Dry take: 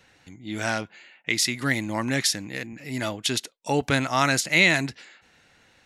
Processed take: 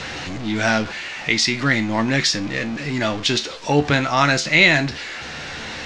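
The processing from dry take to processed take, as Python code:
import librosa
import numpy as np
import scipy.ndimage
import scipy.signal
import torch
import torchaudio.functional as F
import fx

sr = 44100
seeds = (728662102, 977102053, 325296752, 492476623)

p1 = x + 0.5 * 10.0 ** (-31.5 / 20.0) * np.sign(x)
p2 = fx.rider(p1, sr, range_db=5, speed_s=2.0)
p3 = p1 + F.gain(torch.from_numpy(p2), 2.5).numpy()
p4 = scipy.signal.sosfilt(scipy.signal.butter(4, 5900.0, 'lowpass', fs=sr, output='sos'), p3)
p5 = fx.comb_fb(p4, sr, f0_hz=74.0, decay_s=0.24, harmonics='all', damping=0.0, mix_pct=70)
y = F.gain(torch.from_numpy(p5), 2.0).numpy()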